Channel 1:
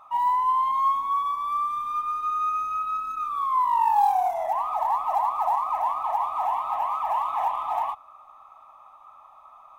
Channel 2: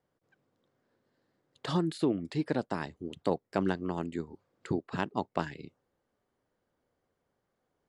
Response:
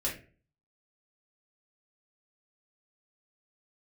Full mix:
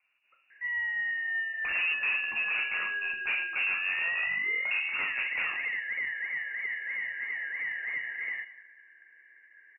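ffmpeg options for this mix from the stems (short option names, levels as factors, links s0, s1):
-filter_complex "[0:a]adelay=500,volume=0.422,asplit=2[s0][s1];[s1]volume=0.141[s2];[1:a]volume=1,asplit=3[s3][s4][s5];[s4]volume=0.668[s6];[s5]volume=0.0708[s7];[2:a]atrim=start_sample=2205[s8];[s6][s8]afir=irnorm=-1:irlink=0[s9];[s2][s7]amix=inputs=2:normalize=0,aecho=0:1:185|370|555|740:1|0.31|0.0961|0.0298[s10];[s0][s3][s9][s10]amix=inputs=4:normalize=0,aeval=exprs='(tanh(20*val(0)+0.1)-tanh(0.1))/20':c=same,lowpass=f=2500:t=q:w=0.5098,lowpass=f=2500:t=q:w=0.6013,lowpass=f=2500:t=q:w=0.9,lowpass=f=2500:t=q:w=2.563,afreqshift=-2900"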